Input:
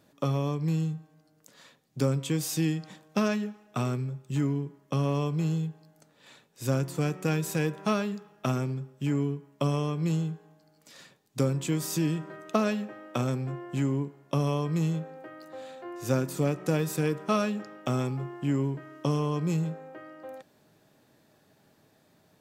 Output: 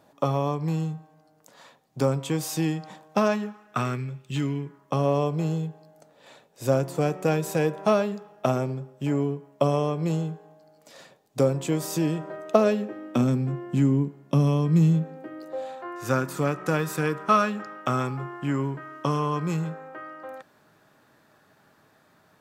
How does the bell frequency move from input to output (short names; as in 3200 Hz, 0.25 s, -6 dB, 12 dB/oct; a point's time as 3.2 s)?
bell +11 dB 1.3 oct
3.3 s 810 Hz
4.43 s 3500 Hz
5.02 s 640 Hz
12.48 s 640 Hz
13.32 s 200 Hz
15.18 s 200 Hz
15.89 s 1300 Hz